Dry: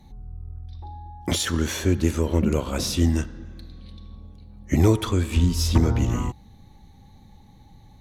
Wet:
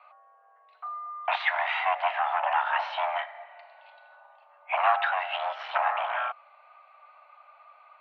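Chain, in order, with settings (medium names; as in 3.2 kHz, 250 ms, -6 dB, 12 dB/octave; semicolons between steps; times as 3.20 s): one-sided clip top -24.5 dBFS; mistuned SSB +370 Hz 380–2500 Hz; trim +7 dB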